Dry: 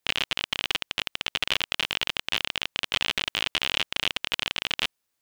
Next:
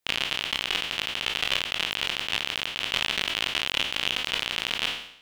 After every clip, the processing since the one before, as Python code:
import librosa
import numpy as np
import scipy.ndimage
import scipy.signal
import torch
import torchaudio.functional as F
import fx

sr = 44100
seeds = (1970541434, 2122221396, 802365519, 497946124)

y = fx.spec_trails(x, sr, decay_s=0.67)
y = y * 10.0 ** (-2.5 / 20.0)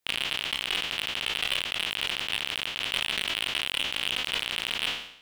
y = np.clip(x, -10.0 ** (-15.0 / 20.0), 10.0 ** (-15.0 / 20.0))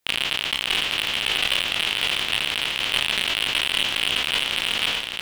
y = x + 10.0 ** (-5.0 / 20.0) * np.pad(x, (int(610 * sr / 1000.0), 0))[:len(x)]
y = y * 10.0 ** (5.5 / 20.0)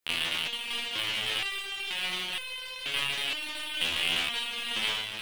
y = fx.resonator_held(x, sr, hz=2.1, low_hz=84.0, high_hz=510.0)
y = y * 10.0 ** (3.5 / 20.0)